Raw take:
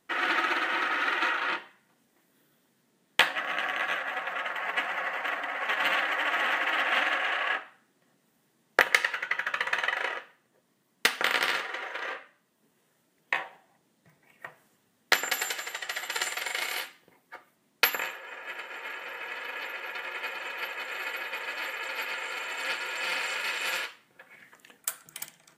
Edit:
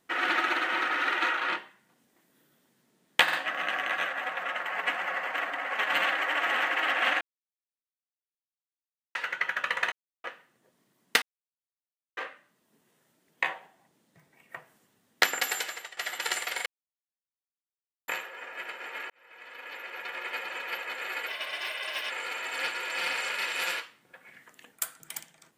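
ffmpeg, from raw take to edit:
-filter_complex "[0:a]asplit=15[a][b][c][d][e][f][g][h][i][j][k][l][m][n][o];[a]atrim=end=3.282[p];[b]atrim=start=3.228:end=3.282[q];[c]atrim=start=3.228:end=7.11,asetpts=PTS-STARTPTS,afade=t=out:st=3.878:d=0.004:c=hsin[r];[d]atrim=start=7.11:end=9.05,asetpts=PTS-STARTPTS,volume=0[s];[e]atrim=start=9.05:end=9.82,asetpts=PTS-STARTPTS,afade=t=in:d=0.004:c=hsin,afade=t=out:st=0.766:d=0.004:c=hsin[t];[f]atrim=start=9.82:end=10.14,asetpts=PTS-STARTPTS,volume=0[u];[g]atrim=start=10.14:end=11.12,asetpts=PTS-STARTPTS,afade=t=in:d=0.004:c=hsin,afade=t=out:st=0.976:d=0.004:c=hsin[v];[h]atrim=start=11.12:end=12.07,asetpts=PTS-STARTPTS,volume=0[w];[i]atrim=start=12.07:end=15.87,asetpts=PTS-STARTPTS,afade=t=in:d=0.004:c=hsin,afade=t=out:st=3.48:d=0.32:silence=0.199526[x];[j]atrim=start=15.87:end=16.56,asetpts=PTS-STARTPTS,afade=t=in:d=0.004:c=hsin:silence=0.199526,afade=t=out:st=0.686:d=0.004:c=hsin[y];[k]atrim=start=16.56:end=17.98,asetpts=PTS-STARTPTS,volume=0[z];[l]atrim=start=17.98:end=19,asetpts=PTS-STARTPTS,afade=t=in:d=0.004:c=hsin,afade=t=out:st=1.016:d=0.004:c=hsin[aa];[m]atrim=start=19:end=21.184,asetpts=PTS-STARTPTS,afade=t=in:d=1.14[ab];[n]atrim=start=21.18:end=22.16,asetpts=PTS-STARTPTS,asetrate=52479,aresample=44100[ac];[o]atrim=start=22.156[ad];[p][q]acrossfade=d=0.004:c1=hsin:c2=hsin[ae];[r][s][t][u][v][w][x][y][z][aa][ab]concat=n=11:v=0:a=1[af];[ae][af]acrossfade=d=0.004:c1=hsin:c2=hsin[ag];[ag][ac]acrossfade=d=0.004:c1=hsin:c2=hsin[ah];[ah][ad]acrossfade=d=0.004:c1=hsin:c2=hsin"

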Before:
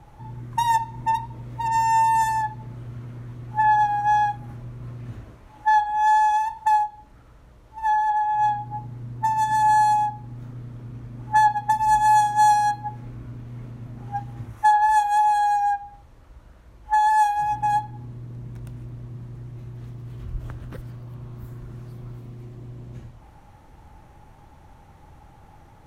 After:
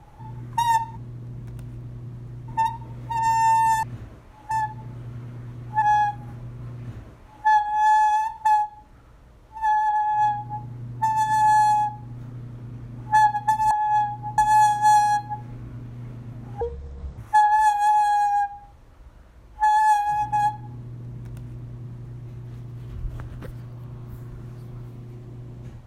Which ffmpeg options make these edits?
-filter_complex "[0:a]asplit=10[a][b][c][d][e][f][g][h][i][j];[a]atrim=end=0.972[k];[b]atrim=start=18.048:end=19.562[l];[c]atrim=start=0.968:end=2.322[m];[d]atrim=start=4.988:end=5.672[n];[e]atrim=start=2.318:end=3.632[o];[f]atrim=start=4.028:end=11.922[p];[g]atrim=start=8.188:end=8.862[q];[h]atrim=start=11.918:end=14.154[r];[i]atrim=start=14.15:end=14.48,asetpts=PTS-STARTPTS,asetrate=25578,aresample=44100,atrim=end_sample=25091,asetpts=PTS-STARTPTS[s];[j]atrim=start=14.476[t];[k][l]acrossfade=d=0.004:c1=hsin:c2=hsin[u];[u][m]acrossfade=d=0.004:c1=hsin:c2=hsin[v];[v][n]acrossfade=d=0.004:c1=hsin:c2=hsin[w];[w][o]acrossfade=d=0.004:c1=hsin:c2=hsin[x];[x][p]acrossfade=d=0.004:c1=hsin:c2=hsin[y];[y][q]acrossfade=d=0.004:c1=hsin:c2=hsin[z];[z][r]acrossfade=d=0.004:c1=hsin:c2=hsin[aa];[aa][s]acrossfade=d=0.004:c1=hsin:c2=hsin[ab];[ab][t]acrossfade=d=0.004:c1=hsin:c2=hsin"

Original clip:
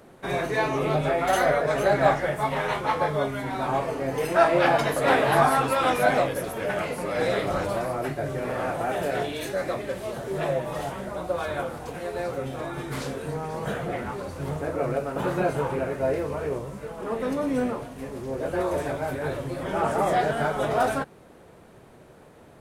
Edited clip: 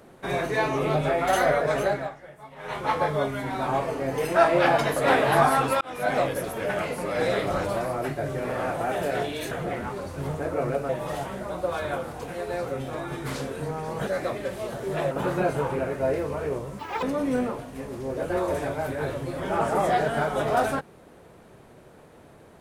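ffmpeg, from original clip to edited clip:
-filter_complex "[0:a]asplit=10[a][b][c][d][e][f][g][h][i][j];[a]atrim=end=2.1,asetpts=PTS-STARTPTS,afade=t=out:st=1.77:d=0.33:silence=0.112202[k];[b]atrim=start=2.1:end=2.57,asetpts=PTS-STARTPTS,volume=-19dB[l];[c]atrim=start=2.57:end=5.81,asetpts=PTS-STARTPTS,afade=t=in:d=0.33:silence=0.112202,afade=t=out:st=3.236:d=0.004:c=hsin[m];[d]atrim=start=5.81:end=9.512,asetpts=PTS-STARTPTS,afade=t=in:d=0.45[n];[e]atrim=start=13.728:end=15.112[o];[f]atrim=start=10.548:end=13.732[p];[g]atrim=start=9.508:end=10.552[q];[h]atrim=start=15.108:end=16.794[r];[i]atrim=start=16.79:end=17.26,asetpts=PTS-STARTPTS,asetrate=87318,aresample=44100,atrim=end_sample=10468,asetpts=PTS-STARTPTS[s];[j]atrim=start=17.256[t];[k][l][m][n]concat=n=4:v=0:a=1[u];[u][o]acrossfade=d=0.004:c1=hsin:c2=hsin[v];[v][p]acrossfade=d=0.004:c1=hsin:c2=hsin[w];[w][q]acrossfade=d=0.004:c1=hsin:c2=hsin[x];[x][r]acrossfade=d=0.004:c1=hsin:c2=hsin[y];[y][s]acrossfade=d=0.004:c1=hsin:c2=hsin[z];[z][t]acrossfade=d=0.004:c1=hsin:c2=hsin"

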